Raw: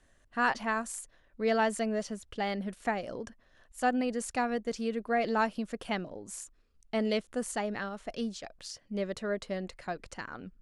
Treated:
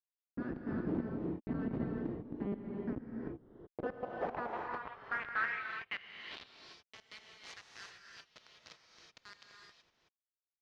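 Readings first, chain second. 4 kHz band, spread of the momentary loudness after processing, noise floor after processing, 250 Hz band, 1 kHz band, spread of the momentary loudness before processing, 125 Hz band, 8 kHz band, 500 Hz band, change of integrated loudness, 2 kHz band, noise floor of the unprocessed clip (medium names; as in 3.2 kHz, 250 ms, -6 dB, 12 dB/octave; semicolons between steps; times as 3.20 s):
-9.0 dB, 20 LU, under -85 dBFS, -6.5 dB, -11.0 dB, 14 LU, -0.5 dB, under -20 dB, -11.5 dB, -7.0 dB, -6.0 dB, -66 dBFS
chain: fade out at the end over 1.02 s; high-pass 95 Hz 12 dB/octave; bass shelf 270 Hz -4 dB; in parallel at -7.5 dB: overload inside the chain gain 28.5 dB; on the sum: brick-wall FIR band-stop 150–1200 Hz; Schmitt trigger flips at -32.5 dBFS; distance through air 310 m; gated-style reverb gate 400 ms rising, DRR 1 dB; band-pass sweep 270 Hz -> 6.1 kHz, 3.16–6.98 s; trim +15 dB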